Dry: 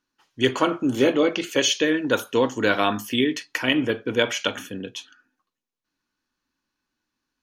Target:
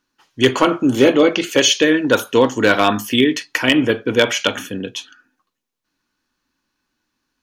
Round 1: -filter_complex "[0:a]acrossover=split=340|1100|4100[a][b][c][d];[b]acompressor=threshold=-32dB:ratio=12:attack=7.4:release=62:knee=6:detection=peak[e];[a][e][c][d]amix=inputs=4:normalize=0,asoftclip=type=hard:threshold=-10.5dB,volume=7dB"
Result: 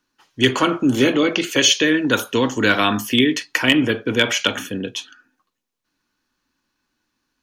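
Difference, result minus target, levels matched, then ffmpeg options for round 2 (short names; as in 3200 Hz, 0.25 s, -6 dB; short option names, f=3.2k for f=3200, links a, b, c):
compressor: peak gain reduction +14 dB
-af "asoftclip=type=hard:threshold=-10.5dB,volume=7dB"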